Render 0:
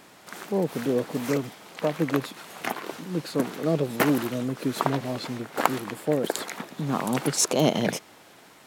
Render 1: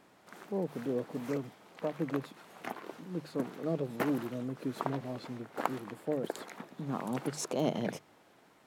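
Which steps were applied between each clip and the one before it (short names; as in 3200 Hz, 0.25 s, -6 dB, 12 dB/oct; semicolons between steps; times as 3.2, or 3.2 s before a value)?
high shelf 2100 Hz -8.5 dB; notches 50/100/150 Hz; gain -8.5 dB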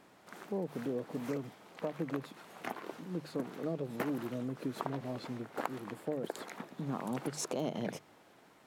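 compressor 3:1, threshold -34 dBFS, peak gain reduction 8.5 dB; gain +1 dB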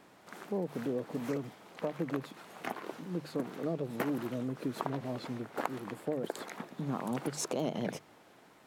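vibrato 9.5 Hz 35 cents; gain +2 dB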